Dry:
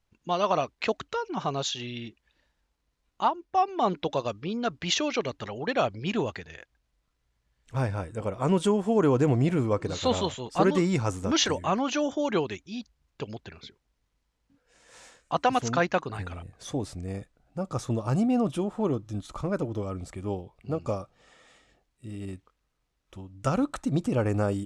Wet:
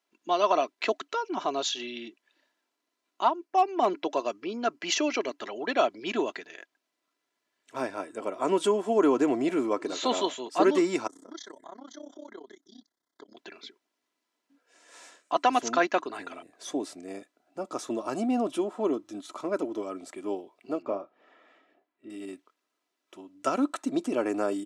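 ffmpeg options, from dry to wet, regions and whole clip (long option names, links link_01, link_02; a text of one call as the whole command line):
ffmpeg -i in.wav -filter_complex "[0:a]asettb=1/sr,asplit=3[link_01][link_02][link_03];[link_01]atrim=end=3.454[link_04];[link_02]atrim=start=3.45:end=5.38,asetpts=PTS-STARTPTS,afade=type=in:duration=0.004:curve=qsin,afade=type=out:start_time=1.926:duration=0.004:curve=qsin,equalizer=frequency=3600:width_type=o:width=0.24:gain=-8.5,asoftclip=type=hard:threshold=-16.5dB[link_05];[link_03]atrim=start=5.376[link_06];[link_04][link_05]acrossfade=duration=0.004:curve1=hsin:curve2=qsin[link_07];[link_07][link_06]acrossfade=duration=0.004:curve1=qsin:curve2=hsin,asettb=1/sr,asplit=3[link_08][link_09][link_10];[link_08]atrim=end=11.074[link_11];[link_09]atrim=start=11.07:end=13.37,asetpts=PTS-STARTPTS,afade=type=in:duration=0.004:curve=qsin,afade=type=out:start_time=2.296:duration=0.004:curve=qsin,acompressor=threshold=-46dB:ratio=2.5:attack=3.2:release=140:knee=1:detection=peak,asuperstop=centerf=2600:order=20:qfactor=2.8,tremolo=f=32:d=0.947[link_12];[link_10]atrim=start=13.366[link_13];[link_11][link_12]acrossfade=duration=0.004:curve1=hsin:curve2=qsin[link_14];[link_14][link_13]acrossfade=duration=0.004:curve1=qsin:curve2=hsin,asettb=1/sr,asplit=3[link_15][link_16][link_17];[link_15]atrim=end=20.824[link_18];[link_16]atrim=start=20.82:end=22.1,asetpts=PTS-STARTPTS,afade=type=in:duration=0.004:curve=qsin,afade=type=out:start_time=1.276:duration=0.004:curve=qsin,lowpass=2000,asplit=2[link_19][link_20];[link_20]adelay=30,volume=-13dB[link_21];[link_19][link_21]amix=inputs=2:normalize=0,atrim=end_sample=56448[link_22];[link_17]atrim=start=22.096[link_23];[link_18][link_22]acrossfade=duration=0.004:curve1=hsin:curve2=qsin[link_24];[link_24][link_23]acrossfade=duration=0.004:curve1=qsin:curve2=hsin,highpass=frequency=250:width=0.5412,highpass=frequency=250:width=1.3066,aecho=1:1:3:0.45" out.wav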